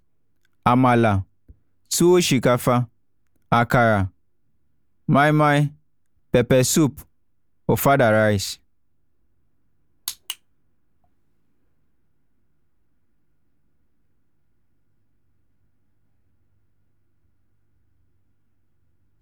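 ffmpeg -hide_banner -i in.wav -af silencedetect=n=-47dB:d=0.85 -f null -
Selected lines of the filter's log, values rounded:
silence_start: 4.10
silence_end: 5.08 | silence_duration: 0.98
silence_start: 8.56
silence_end: 10.07 | silence_duration: 1.51
silence_start: 10.36
silence_end: 19.21 | silence_duration: 8.86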